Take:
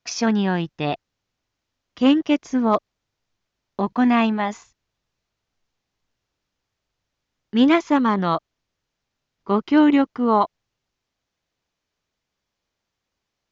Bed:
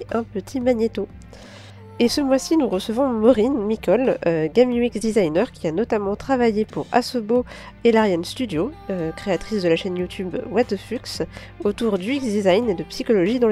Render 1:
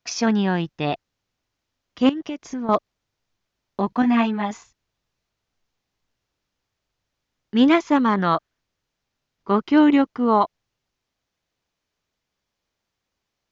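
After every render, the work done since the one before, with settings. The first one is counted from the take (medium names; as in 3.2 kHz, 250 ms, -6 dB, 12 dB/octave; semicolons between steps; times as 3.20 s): 2.09–2.69 s: compression 12:1, threshold -25 dBFS; 4.02–4.51 s: three-phase chorus; 8.12–9.61 s: dynamic bell 1.6 kHz, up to +7 dB, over -49 dBFS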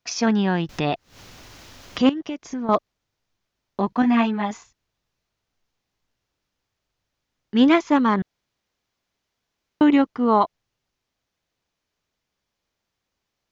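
0.69–2.09 s: upward compressor, threshold -17 dBFS; 8.22–9.81 s: room tone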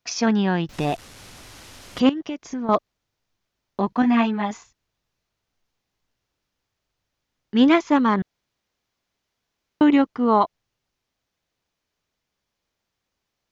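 0.73–2.00 s: one-bit delta coder 64 kbps, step -39 dBFS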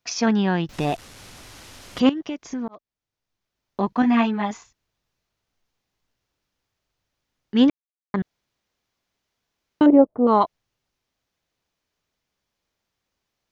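2.68–3.87 s: fade in linear; 7.70–8.14 s: mute; 9.86–10.27 s: resonant low-pass 610 Hz, resonance Q 4.1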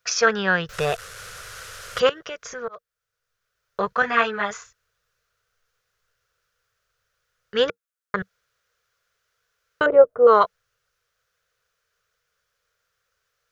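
FFT filter 110 Hz 0 dB, 190 Hz -7 dB, 270 Hz -24 dB, 470 Hz +9 dB, 860 Hz -6 dB, 1.4 kHz +15 dB, 2.1 kHz +4 dB, 4.2 kHz +3 dB, 7.1 kHz +6 dB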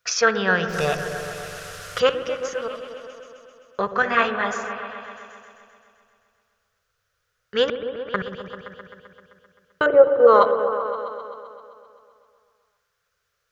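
on a send: delay with an opening low-pass 130 ms, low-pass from 400 Hz, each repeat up 1 oct, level -6 dB; on the sum: spring tank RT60 2 s, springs 59 ms, chirp 75 ms, DRR 12 dB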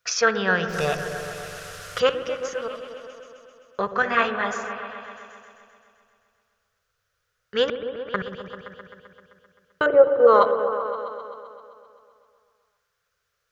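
trim -1.5 dB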